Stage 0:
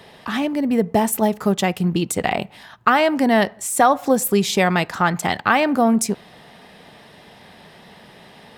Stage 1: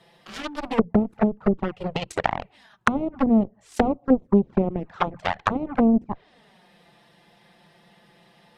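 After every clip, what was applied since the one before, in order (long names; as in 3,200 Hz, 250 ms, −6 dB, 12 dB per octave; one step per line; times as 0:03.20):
harmonic generator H 7 −15 dB, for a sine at −3 dBFS
flanger swept by the level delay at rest 6 ms, full sweep at −15 dBFS
treble cut that deepens with the level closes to 350 Hz, closed at −18.5 dBFS
level +4 dB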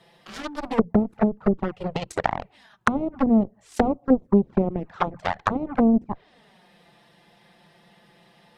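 dynamic equaliser 2,800 Hz, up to −5 dB, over −46 dBFS, Q 1.7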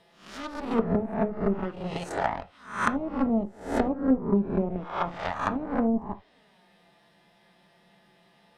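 peak hold with a rise ahead of every peak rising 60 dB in 0.48 s
convolution reverb, pre-delay 3 ms, DRR 8.5 dB
level −7 dB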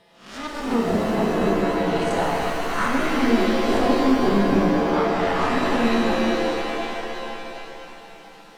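brickwall limiter −19.5 dBFS, peak gain reduction 10.5 dB
reverb with rising layers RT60 3.3 s, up +7 semitones, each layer −2 dB, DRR −1 dB
level +4 dB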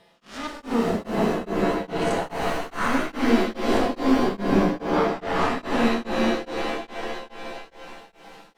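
tremolo along a rectified sine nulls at 2.4 Hz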